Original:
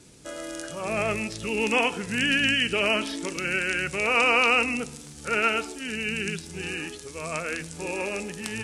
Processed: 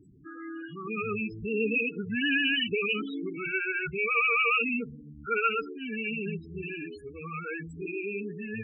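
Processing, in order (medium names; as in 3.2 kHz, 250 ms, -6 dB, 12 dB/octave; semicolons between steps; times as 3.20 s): brick-wall FIR band-stop 490–1100 Hz; dynamic bell 6.5 kHz, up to -6 dB, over -48 dBFS, Q 1.9; loudest bins only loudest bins 8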